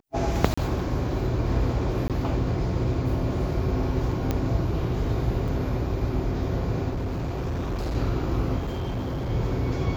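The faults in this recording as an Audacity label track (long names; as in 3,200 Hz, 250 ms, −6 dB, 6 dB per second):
0.540000	0.570000	drop-out 35 ms
2.080000	2.100000	drop-out 17 ms
4.310000	4.310000	click −12 dBFS
5.480000	5.490000	drop-out 5.3 ms
6.890000	7.960000	clipping −25 dBFS
8.580000	9.310000	clipping −25.5 dBFS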